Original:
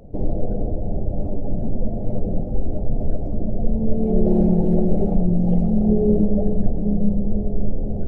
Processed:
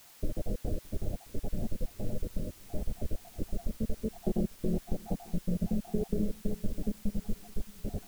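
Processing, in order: random holes in the spectrogram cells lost 63%; compression 4:1, threshold -18 dBFS, peak gain reduction 7.5 dB; word length cut 8-bit, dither triangular; on a send: feedback echo behind a low-pass 615 ms, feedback 64%, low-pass 450 Hz, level -22.5 dB; on the sum: trim -7.5 dB

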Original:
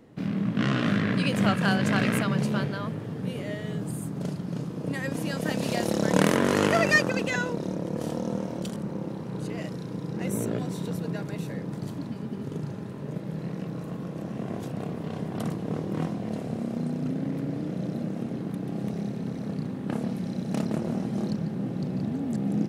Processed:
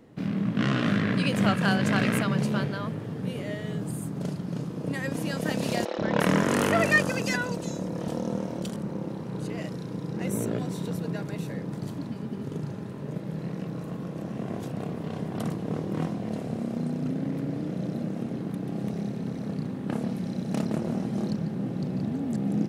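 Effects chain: 5.85–8.08 s: three bands offset in time mids, lows, highs 130/350 ms, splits 390/4300 Hz

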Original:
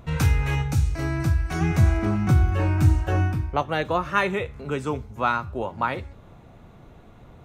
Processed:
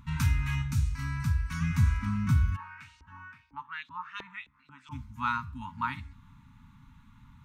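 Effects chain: FFT band-reject 290–840 Hz; 2.55–4.91 s: LFO band-pass saw up 1.3 Hz -> 5.4 Hz 390–4500 Hz; trim -6 dB

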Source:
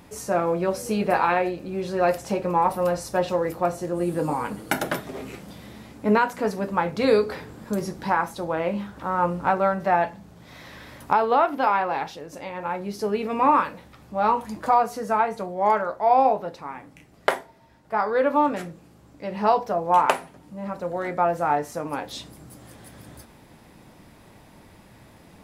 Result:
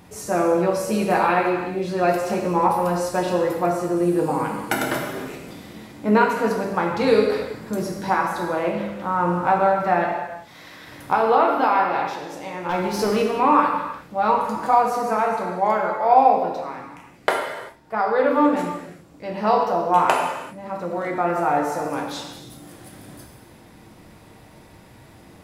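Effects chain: 10.10–10.87 s: bass shelf 440 Hz -7.5 dB; 12.69–13.22 s: waveshaping leveller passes 2; gated-style reverb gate 420 ms falling, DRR 0 dB

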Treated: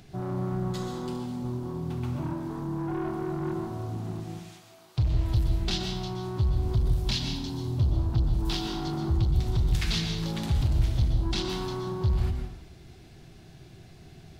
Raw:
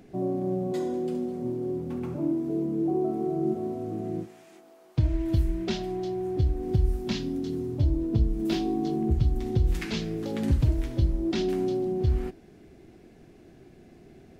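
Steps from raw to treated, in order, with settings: saturation -26.5 dBFS, distortion -9 dB; graphic EQ 125/250/500/2000/4000 Hz +5/-12/-10/-4/+6 dB; reverberation RT60 0.75 s, pre-delay 113 ms, DRR 4 dB; trim +5.5 dB

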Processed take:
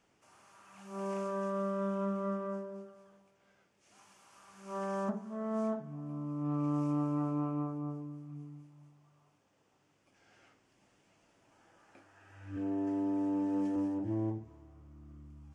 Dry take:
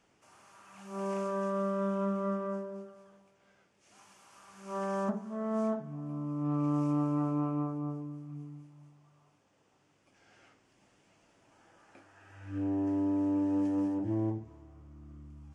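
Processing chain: 12.56–13.76 s: comb 4.5 ms, depth 65%; trim -2.5 dB

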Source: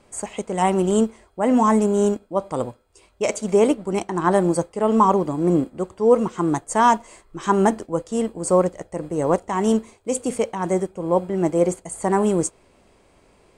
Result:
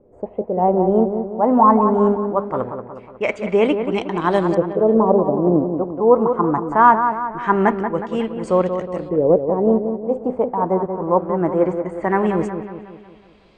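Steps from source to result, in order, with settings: LFO low-pass saw up 0.22 Hz 460–4100 Hz; on a send: feedback echo behind a low-pass 182 ms, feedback 50%, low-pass 2 kHz, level -7.5 dB

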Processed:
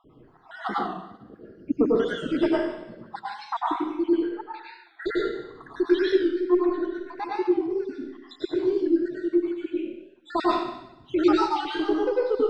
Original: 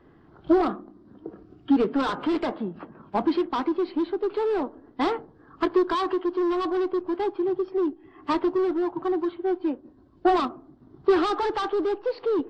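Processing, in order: random holes in the spectrogram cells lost 77%; 3.89–4.54 s: level-controlled noise filter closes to 420 Hz, open at -22 dBFS; 6.31–6.85 s: low-pass 2 kHz 12 dB/octave; reverberation RT60 0.85 s, pre-delay 92 ms, DRR -5.5 dB; warped record 45 rpm, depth 100 cents

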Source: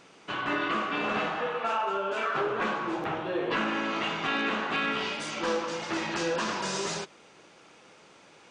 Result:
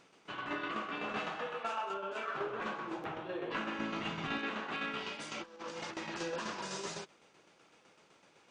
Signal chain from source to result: 1.16–1.94 s: treble shelf 4.1 kHz +7.5 dB; tremolo saw down 7.9 Hz, depth 50%; 3.79–4.38 s: tone controls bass +11 dB, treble +1 dB; 5.31–5.97 s: compressor with a negative ratio -37 dBFS, ratio -0.5; trim -7 dB

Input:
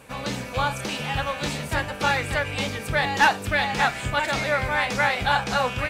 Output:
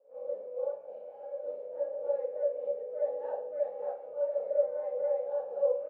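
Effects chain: 0.65–1.42 s: comb filter that takes the minimum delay 1.3 ms; Butterworth band-pass 530 Hz, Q 4.3; tilt EQ +1.5 dB/octave; delay 136 ms -16.5 dB; Schroeder reverb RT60 0.36 s, combs from 30 ms, DRR -8 dB; trim -7.5 dB

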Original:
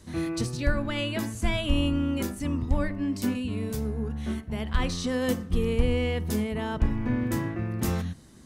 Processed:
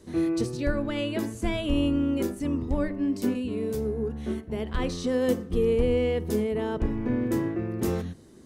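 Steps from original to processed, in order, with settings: peaking EQ 400 Hz +12 dB 1.1 oct; hum notches 50/100 Hz; trim -4 dB

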